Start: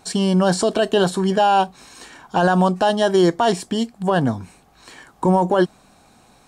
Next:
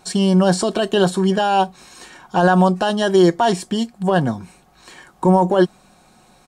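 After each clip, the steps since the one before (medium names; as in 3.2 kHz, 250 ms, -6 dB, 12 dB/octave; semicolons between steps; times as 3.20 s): comb 5.5 ms, depth 38%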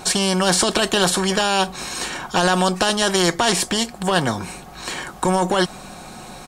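spectrum-flattening compressor 2:1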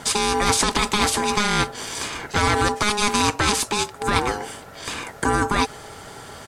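ring modulator 620 Hz; trim +1 dB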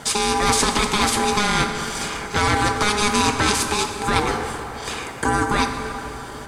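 plate-style reverb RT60 3.8 s, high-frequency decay 0.5×, DRR 4.5 dB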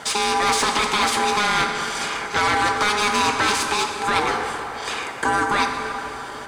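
overdrive pedal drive 15 dB, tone 3.9 kHz, clips at -1.5 dBFS; trim -5.5 dB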